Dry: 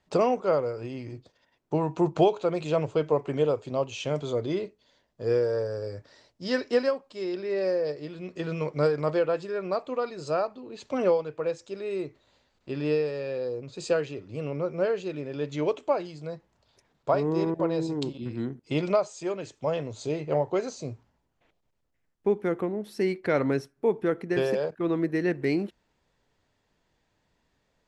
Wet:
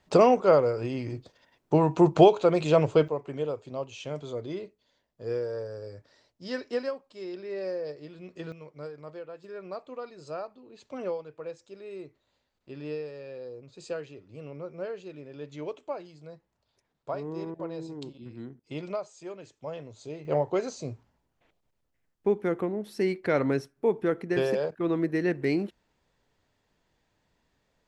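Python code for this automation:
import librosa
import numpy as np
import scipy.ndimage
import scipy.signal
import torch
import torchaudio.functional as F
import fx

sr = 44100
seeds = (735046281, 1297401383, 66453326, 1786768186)

y = fx.gain(x, sr, db=fx.steps((0.0, 4.5), (3.08, -6.5), (8.52, -16.5), (9.44, -9.5), (20.25, -0.5)))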